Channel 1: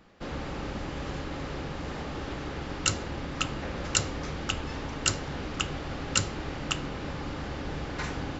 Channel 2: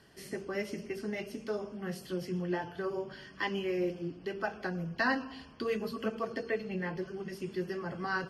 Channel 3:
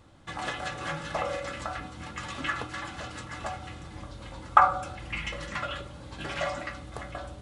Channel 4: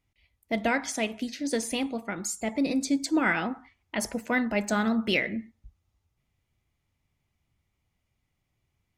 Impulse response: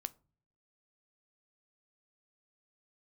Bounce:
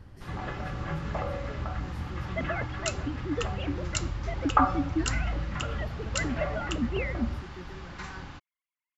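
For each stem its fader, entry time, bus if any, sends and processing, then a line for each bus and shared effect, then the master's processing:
−7.0 dB, 0.00 s, no send, low shelf with overshoot 730 Hz −8.5 dB, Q 1.5
−13.5 dB, 0.00 s, no send, multiband upward and downward compressor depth 40%
−4.5 dB, 0.00 s, no send, low-pass filter 2,000 Hz 12 dB per octave; low-shelf EQ 180 Hz +7 dB
−3.5 dB, 1.85 s, no send, three sine waves on the formant tracks; downward compressor, threshold −26 dBFS, peak gain reduction 13 dB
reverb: not used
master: low-shelf EQ 180 Hz +11 dB

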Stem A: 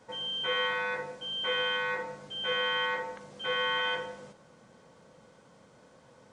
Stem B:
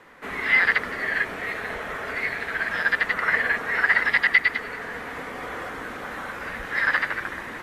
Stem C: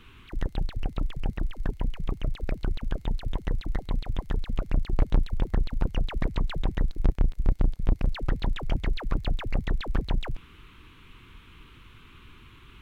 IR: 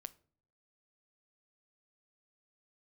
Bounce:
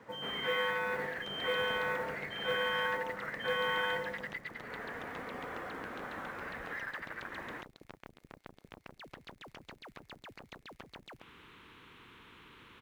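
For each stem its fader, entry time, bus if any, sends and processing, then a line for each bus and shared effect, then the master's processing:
−1.5 dB, 0.00 s, no send, low-shelf EQ 250 Hz +6 dB
−6.5 dB, 0.00 s, no send, downward compressor 12 to 1, threshold −29 dBFS, peak gain reduction 17 dB
−6.0 dB, 0.85 s, no send, downward compressor, threshold −27 dBFS, peak gain reduction 11.5 dB; every bin compressed towards the loudest bin 4 to 1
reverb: not used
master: high-pass filter 86 Hz 6 dB per octave; high-shelf EQ 3,000 Hz −10.5 dB; noise that follows the level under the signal 28 dB

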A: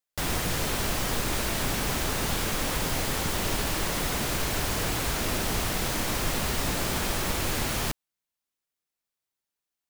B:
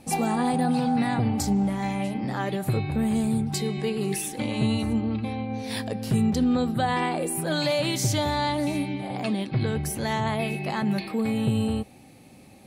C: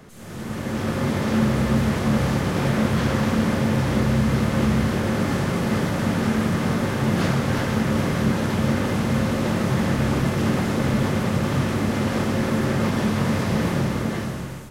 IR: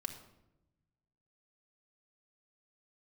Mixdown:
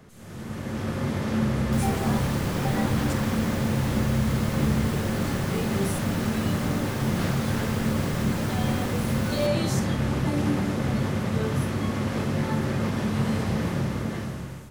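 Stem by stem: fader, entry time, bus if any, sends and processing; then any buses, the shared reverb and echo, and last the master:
−10.0 dB, 1.55 s, no send, no processing
+1.5 dB, 1.70 s, no send, step-sequenced resonator 2.1 Hz 65–1,100 Hz
−6.0 dB, 0.00 s, no send, parametric band 81 Hz +4 dB 1.9 octaves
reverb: not used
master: no processing

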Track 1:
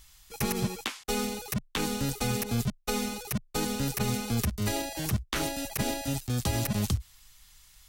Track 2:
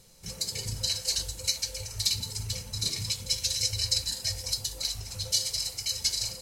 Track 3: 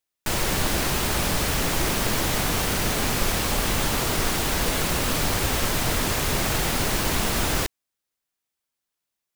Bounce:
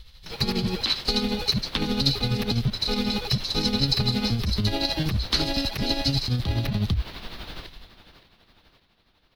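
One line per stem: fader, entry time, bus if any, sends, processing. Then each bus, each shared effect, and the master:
+2.5 dB, 0.00 s, bus A, no send, no echo send, low-shelf EQ 260 Hz +11 dB; automatic gain control gain up to 7 dB
−4.5 dB, 0.00 s, no bus, no send, no echo send, high-shelf EQ 4,300 Hz +10.5 dB
−14.0 dB, 0.00 s, bus A, no send, echo send −13 dB, no processing
bus A: 0.0 dB, brickwall limiter −15.5 dBFS, peak gain reduction 15 dB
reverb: not used
echo: repeating echo 567 ms, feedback 47%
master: high shelf with overshoot 5,500 Hz −11.5 dB, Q 3; amplitude tremolo 12 Hz, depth 53%

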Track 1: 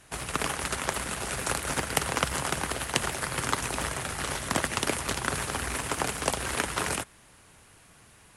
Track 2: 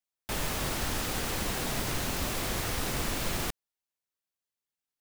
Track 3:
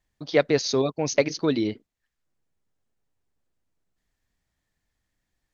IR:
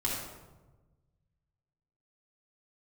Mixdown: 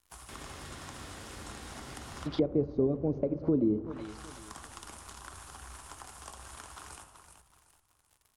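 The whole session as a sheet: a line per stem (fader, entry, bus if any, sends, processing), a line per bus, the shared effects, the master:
−5.5 dB, 0.00 s, bus A, send −20.5 dB, echo send −18 dB, octave-band graphic EQ 125/250/500/1,000/2,000/4,000 Hz −9/−8/−11/+4/−11/−4 dB
−8.0 dB, 0.00 s, bus A, send −16 dB, no echo send, high-pass filter 56 Hz
0.0 dB, 2.05 s, no bus, send −18 dB, echo send −17 dB, parametric band 1,800 Hz −11.5 dB 0.4 octaves; downward compressor 8 to 1, threshold −21 dBFS, peak gain reduction 7.5 dB
bus A: 0.0 dB, log-companded quantiser 4 bits; downward compressor 2.5 to 1, threshold −51 dBFS, peak gain reduction 15.5 dB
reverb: on, RT60 1.2 s, pre-delay 3 ms
echo: repeating echo 378 ms, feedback 34%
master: treble cut that deepens with the level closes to 410 Hz, closed at −25.5 dBFS

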